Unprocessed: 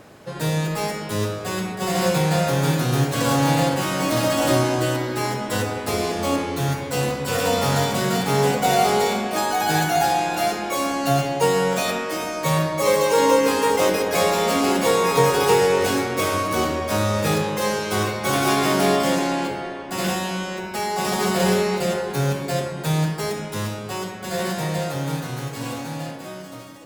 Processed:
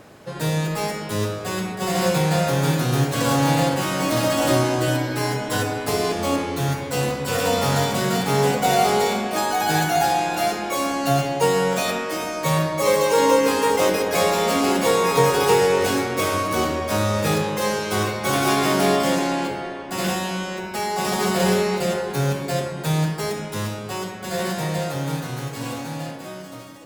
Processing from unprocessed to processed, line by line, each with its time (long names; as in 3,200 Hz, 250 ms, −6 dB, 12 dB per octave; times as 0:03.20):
0:04.87–0:06.13: comb filter 6.8 ms, depth 61%